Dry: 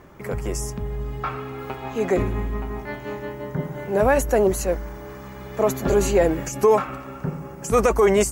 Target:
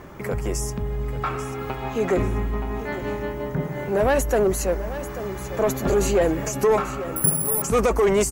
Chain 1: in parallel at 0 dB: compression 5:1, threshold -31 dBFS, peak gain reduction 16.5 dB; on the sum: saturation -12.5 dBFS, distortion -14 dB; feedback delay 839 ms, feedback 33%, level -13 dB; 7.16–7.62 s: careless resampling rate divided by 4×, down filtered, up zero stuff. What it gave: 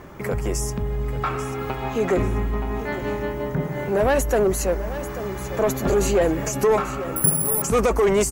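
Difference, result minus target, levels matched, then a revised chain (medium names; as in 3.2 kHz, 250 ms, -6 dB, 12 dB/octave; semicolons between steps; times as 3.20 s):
compression: peak gain reduction -6.5 dB
in parallel at 0 dB: compression 5:1, threshold -39 dBFS, peak gain reduction 23 dB; on the sum: saturation -12.5 dBFS, distortion -15 dB; feedback delay 839 ms, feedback 33%, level -13 dB; 7.16–7.62 s: careless resampling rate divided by 4×, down filtered, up zero stuff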